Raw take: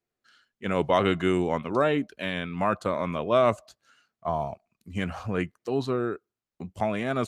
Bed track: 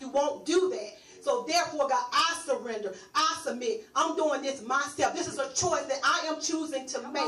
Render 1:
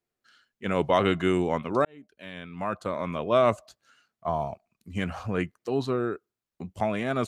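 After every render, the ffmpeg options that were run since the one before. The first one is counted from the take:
ffmpeg -i in.wav -filter_complex "[0:a]asplit=2[link_01][link_02];[link_01]atrim=end=1.85,asetpts=PTS-STARTPTS,afade=type=out:start_time=1.846:duration=0.004:curve=hsin[link_03];[link_02]atrim=start=1.85,asetpts=PTS-STARTPTS,afade=type=in:duration=1.52[link_04];[link_03][link_04]concat=n=2:v=0:a=1" out.wav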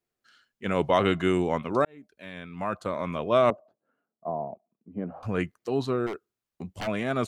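ffmpeg -i in.wav -filter_complex "[0:a]asettb=1/sr,asplit=3[link_01][link_02][link_03];[link_01]atrim=end=1.844[link_04];[link_02]atrim=start=1.84:end=2.52,asetpts=PTS-STARTPTS,afade=type=in:duration=0.004:curve=qsin,afade=type=out:start_time=0.676:duration=0.004:curve=qsin,bandreject=frequency=3000:width=8[link_05];[link_03]atrim=start=2.516[link_06];[link_04][link_05]acrossfade=duration=0.004:curve1=hsin:curve2=qsin[link_07];[link_07][link_06]acrossfade=duration=0.004:curve1=qsin:curve2=hsin,asettb=1/sr,asplit=3[link_08][link_09][link_10];[link_08]atrim=end=3.504[link_11];[link_09]atrim=start=3.5:end=5.23,asetpts=PTS-STARTPTS,afade=type=in:duration=0.004:curve=qsin,afade=type=out:start_time=1.726:duration=0.004:curve=qsin,asuperpass=centerf=370:order=4:qfactor=0.69[link_12];[link_10]atrim=start=5.226[link_13];[link_11][link_12]acrossfade=duration=0.004:curve1=hsin:curve2=qsin[link_14];[link_14][link_13]acrossfade=duration=0.004:curve1=qsin:curve2=hsin,asplit=3[link_15][link_16][link_17];[link_15]afade=type=out:start_time=6.06:duration=0.02[link_18];[link_16]aeval=exprs='0.0447*(abs(mod(val(0)/0.0447+3,4)-2)-1)':channel_layout=same,afade=type=in:start_time=6.06:duration=0.02,afade=type=out:start_time=6.86:duration=0.02[link_19];[link_17]afade=type=in:start_time=6.86:duration=0.02[link_20];[link_18][link_19][link_20]amix=inputs=3:normalize=0" out.wav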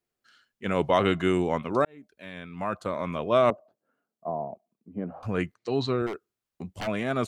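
ffmpeg -i in.wav -filter_complex "[0:a]asettb=1/sr,asplit=3[link_01][link_02][link_03];[link_01]atrim=end=5.544[link_04];[link_02]atrim=start=5.54:end=6.02,asetpts=PTS-STARTPTS,afade=type=in:duration=0.004:curve=qsin,afade=type=out:start_time=0.476:duration=0.004:curve=qsin,highpass=110,equalizer=frequency=110:width_type=q:width=4:gain=10,equalizer=frequency=2200:width_type=q:width=4:gain=6,equalizer=frequency=4100:width_type=q:width=4:gain=8,lowpass=frequency=7700:width=0.5412,lowpass=frequency=7700:width=1.3066[link_05];[link_03]atrim=start=6.016[link_06];[link_04][link_05]acrossfade=duration=0.004:curve1=hsin:curve2=qsin[link_07];[link_07][link_06]acrossfade=duration=0.004:curve1=qsin:curve2=hsin" out.wav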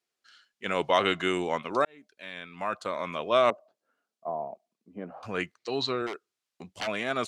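ffmpeg -i in.wav -af "lowpass=4800,aemphasis=mode=production:type=riaa" out.wav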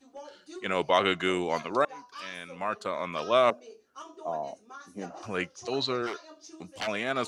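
ffmpeg -i in.wav -i bed.wav -filter_complex "[1:a]volume=-18.5dB[link_01];[0:a][link_01]amix=inputs=2:normalize=0" out.wav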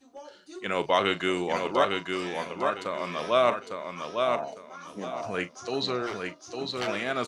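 ffmpeg -i in.wav -filter_complex "[0:a]asplit=2[link_01][link_02];[link_02]adelay=40,volume=-14dB[link_03];[link_01][link_03]amix=inputs=2:normalize=0,aecho=1:1:854|1708|2562|3416:0.631|0.164|0.0427|0.0111" out.wav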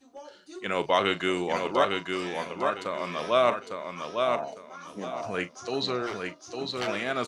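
ffmpeg -i in.wav -af anull out.wav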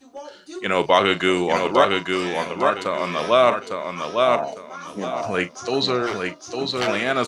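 ffmpeg -i in.wav -af "volume=8dB,alimiter=limit=-3dB:level=0:latency=1" out.wav

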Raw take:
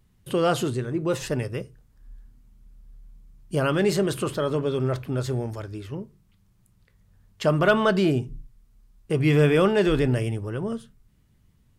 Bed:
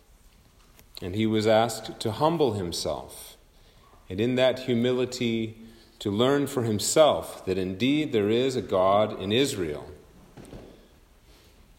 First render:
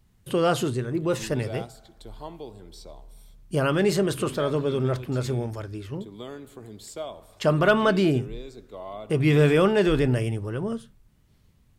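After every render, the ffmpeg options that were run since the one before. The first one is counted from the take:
ffmpeg -i in.wav -i bed.wav -filter_complex "[1:a]volume=-16.5dB[link_01];[0:a][link_01]amix=inputs=2:normalize=0" out.wav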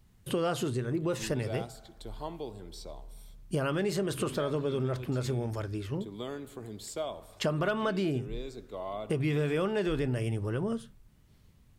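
ffmpeg -i in.wav -af "acompressor=threshold=-28dB:ratio=4" out.wav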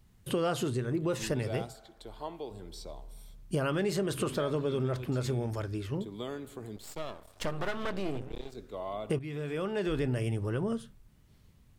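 ffmpeg -i in.wav -filter_complex "[0:a]asettb=1/sr,asplit=3[link_01][link_02][link_03];[link_01]atrim=end=1.734[link_04];[link_02]atrim=start=1.73:end=2.51,asetpts=PTS-STARTPTS,afade=type=in:duration=0.004:curve=qsin,afade=type=out:start_time=0.776:duration=0.004:curve=qsin,bass=frequency=250:gain=-8,treble=frequency=4000:gain=-4[link_05];[link_03]atrim=start=2.506[link_06];[link_04][link_05]acrossfade=duration=0.004:curve1=hsin:curve2=qsin[link_07];[link_07][link_06]acrossfade=duration=0.004:curve1=qsin:curve2=hsin,asettb=1/sr,asplit=3[link_08][link_09][link_10];[link_08]atrim=end=6.764[link_11];[link_09]atrim=start=6.76:end=8.55,asetpts=PTS-STARTPTS,afade=type=in:duration=0.004:curve=qsin,afade=type=out:start_time=1.786:duration=0.004:curve=qsin,aeval=exprs='max(val(0),0)':channel_layout=same[link_12];[link_10]atrim=start=8.546[link_13];[link_11][link_12]acrossfade=duration=0.004:curve1=hsin:curve2=qsin[link_14];[link_14][link_13]acrossfade=duration=0.004:curve1=qsin:curve2=hsin,asplit=2[link_15][link_16];[link_15]atrim=end=9.19,asetpts=PTS-STARTPTS,afade=type=out:start_time=9.186:duration=0.004:curve=hsin:silence=0.223872[link_17];[link_16]atrim=start=9.19,asetpts=PTS-STARTPTS,afade=type=in:duration=0.84:silence=0.223872[link_18];[link_17][link_18]concat=n=2:v=0:a=1" out.wav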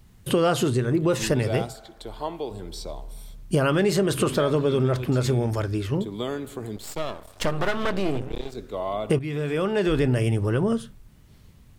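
ffmpeg -i in.wav -af "volume=9dB" out.wav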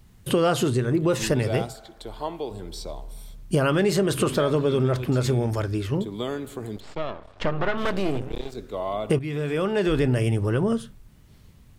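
ffmpeg -i in.wav -filter_complex "[0:a]asettb=1/sr,asplit=3[link_01][link_02][link_03];[link_01]atrim=end=6.804[link_04];[link_02]atrim=start=6.8:end=7.78,asetpts=PTS-STARTPTS,afade=type=in:duration=0.004:curve=qsin,afade=type=out:start_time=0.976:duration=0.004:curve=qsin,lowpass=3000[link_05];[link_03]atrim=start=7.776[link_06];[link_04][link_05]acrossfade=duration=0.004:curve1=hsin:curve2=qsin[link_07];[link_07][link_06]acrossfade=duration=0.004:curve1=qsin:curve2=hsin" out.wav

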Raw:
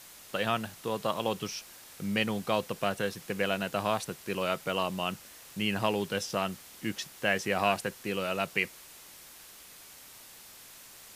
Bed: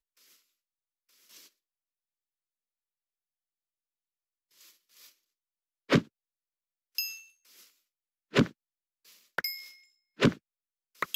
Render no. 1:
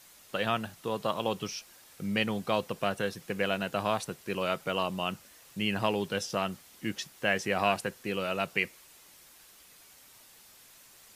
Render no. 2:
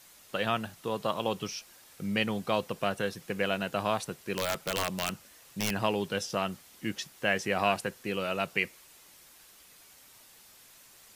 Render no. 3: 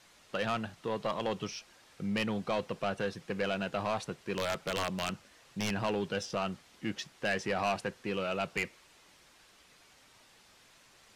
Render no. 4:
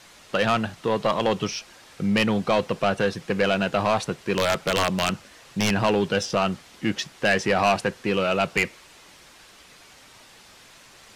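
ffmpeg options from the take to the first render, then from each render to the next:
ffmpeg -i in.wav -af "afftdn=noise_reduction=6:noise_floor=-51" out.wav
ffmpeg -i in.wav -filter_complex "[0:a]asplit=3[link_01][link_02][link_03];[link_01]afade=type=out:start_time=4.36:duration=0.02[link_04];[link_02]aeval=exprs='(mod(11.2*val(0)+1,2)-1)/11.2':channel_layout=same,afade=type=in:start_time=4.36:duration=0.02,afade=type=out:start_time=5.7:duration=0.02[link_05];[link_03]afade=type=in:start_time=5.7:duration=0.02[link_06];[link_04][link_05][link_06]amix=inputs=3:normalize=0" out.wav
ffmpeg -i in.wav -af "adynamicsmooth=sensitivity=1.5:basefreq=6100,asoftclip=type=tanh:threshold=-24dB" out.wav
ffmpeg -i in.wav -af "volume=11dB" out.wav

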